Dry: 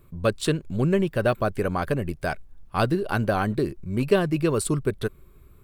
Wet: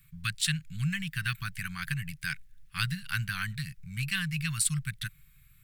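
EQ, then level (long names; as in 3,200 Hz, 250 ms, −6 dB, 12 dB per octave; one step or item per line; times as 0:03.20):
elliptic band-stop filter 110–1,800 Hz, stop band 70 dB
low shelf with overshoot 120 Hz −10.5 dB, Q 3
+3.5 dB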